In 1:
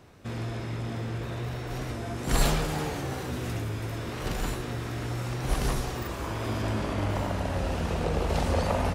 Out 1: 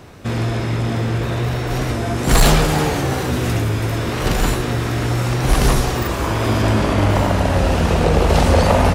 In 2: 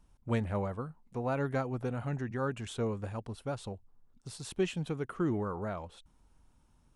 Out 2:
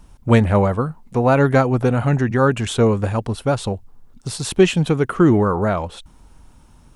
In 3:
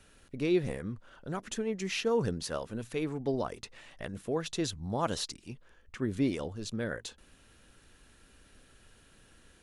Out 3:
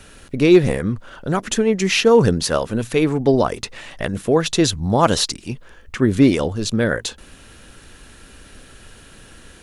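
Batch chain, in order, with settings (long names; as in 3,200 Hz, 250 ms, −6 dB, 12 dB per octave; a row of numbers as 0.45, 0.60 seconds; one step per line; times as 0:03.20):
hard clipping −19.5 dBFS
loudness normalisation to −18 LKFS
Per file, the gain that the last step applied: +13.0, +17.5, +16.0 decibels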